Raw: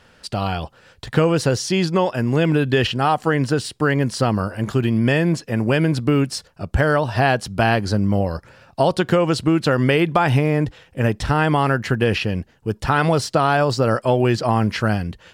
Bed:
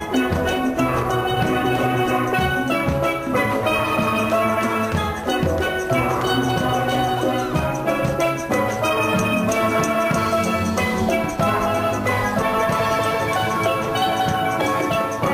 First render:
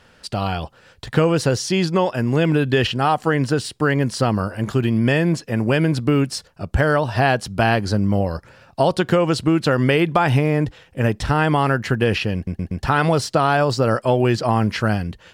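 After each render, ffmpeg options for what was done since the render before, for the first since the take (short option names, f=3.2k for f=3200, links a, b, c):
-filter_complex "[0:a]asplit=5[a][b][c][d][e];[a]atrim=end=12.472[f];[b]atrim=start=12.348:end=12.472[g];[c]atrim=start=12.348:end=12.472[h];[d]atrim=start=12.348:end=12.472[i];[e]atrim=start=12.828[j];[f][g]acrossfade=d=0.004:c1=hsin:c2=hsin[k];[k][h]acrossfade=d=0.004:c1=hsin:c2=hsin[l];[l][i]acrossfade=d=0.004:c1=hsin:c2=hsin[m];[m][j]acrossfade=d=0.004:c1=hsin:c2=hsin"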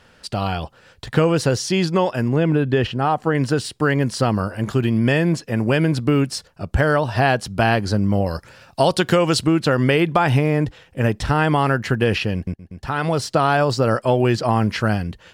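-filter_complex "[0:a]asettb=1/sr,asplit=3[a][b][c];[a]atrim=end=2.284[d];[b]atrim=start=2.28:end=3.35,asetpts=PTS-STARTPTS,afade=t=in:d=0.004:c=qsin,afade=t=out:st=1.066:d=0.004:c=qsin,highshelf=f=2.3k:g=-10.5[e];[c]atrim=start=3.346[f];[d][e]acrossfade=d=0.004:c1=hsin:c2=qsin[g];[g][f]acrossfade=d=0.004:c1=qsin:c2=hsin,asettb=1/sr,asplit=3[h][i][j];[h]atrim=end=8.264[k];[i]atrim=start=8.26:end=9.47,asetpts=PTS-STARTPTS,afade=t=in:d=0.004:c=qsin,afade=t=out:st=1.206:d=0.004:c=qsin,highshelf=f=2.5k:g=8[l];[j]atrim=start=9.466[m];[k][l]acrossfade=d=0.004:c1=hsin:c2=qsin[n];[n][m]acrossfade=d=0.004:c1=qsin:c2=hsin,asplit=2[o][p];[o]atrim=end=12.54,asetpts=PTS-STARTPTS,afade=t=out:st=12.536:d=0.004:c=hsin:silence=0.0944061[q];[p]atrim=start=12.54,asetpts=PTS-STARTPTS,afade=t=in:d=0.84:silence=0.0944061[r];[q][r]concat=n=2:v=0:a=1"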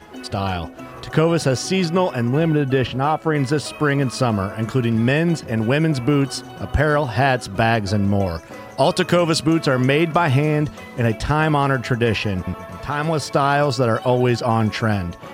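-filter_complex "[1:a]volume=-16.5dB[a];[0:a][a]amix=inputs=2:normalize=0"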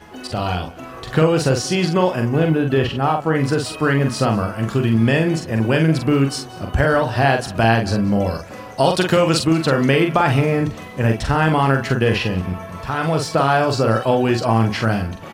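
-filter_complex "[0:a]asplit=2[a][b];[b]adelay=44,volume=-5dB[c];[a][c]amix=inputs=2:normalize=0,aecho=1:1:184:0.0794"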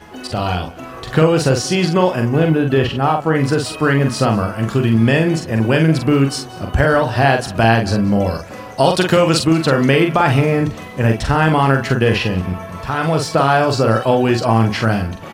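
-af "volume=2.5dB,alimiter=limit=-1dB:level=0:latency=1"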